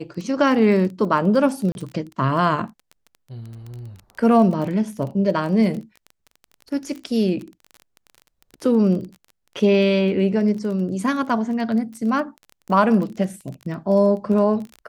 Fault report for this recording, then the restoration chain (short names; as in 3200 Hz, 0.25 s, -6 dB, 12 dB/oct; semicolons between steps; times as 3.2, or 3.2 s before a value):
crackle 22/s -29 dBFS
1.72–1.75 gap 31 ms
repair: de-click; interpolate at 1.72, 31 ms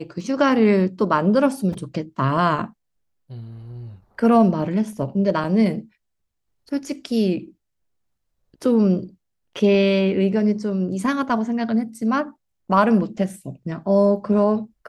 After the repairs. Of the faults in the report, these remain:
none